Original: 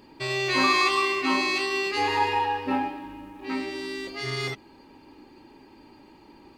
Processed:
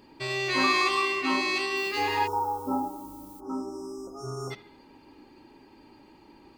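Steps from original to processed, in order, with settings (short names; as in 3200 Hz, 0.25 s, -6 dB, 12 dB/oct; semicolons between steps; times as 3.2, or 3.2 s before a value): analogue delay 73 ms, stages 2048, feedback 50%, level -18 dB; 2.27–4.51 spectral delete 1500–5000 Hz; 1.76–3.39 added noise violet -50 dBFS; gain -2.5 dB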